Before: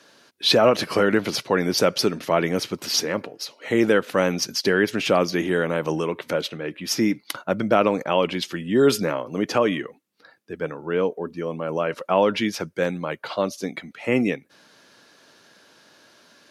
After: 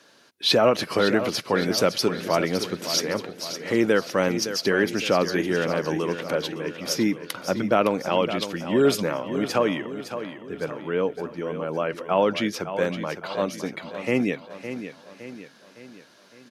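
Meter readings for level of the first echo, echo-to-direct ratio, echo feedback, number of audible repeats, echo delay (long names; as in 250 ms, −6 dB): −10.5 dB, −9.5 dB, 49%, 4, 562 ms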